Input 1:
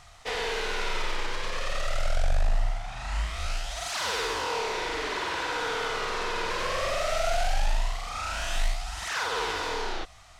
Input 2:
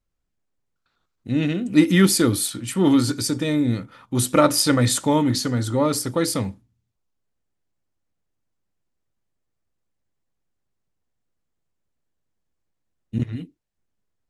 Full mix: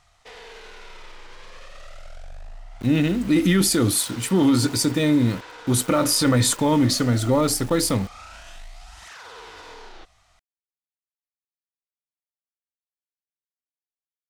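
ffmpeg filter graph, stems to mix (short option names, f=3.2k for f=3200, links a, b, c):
-filter_complex "[0:a]alimiter=level_in=1dB:limit=-24dB:level=0:latency=1:release=45,volume=-1dB,volume=-8.5dB[a];[1:a]alimiter=limit=-13dB:level=0:latency=1:release=17,aeval=exprs='val(0)*gte(abs(val(0)),0.0141)':c=same,adelay=1550,volume=2.5dB[b];[a][b]amix=inputs=2:normalize=0"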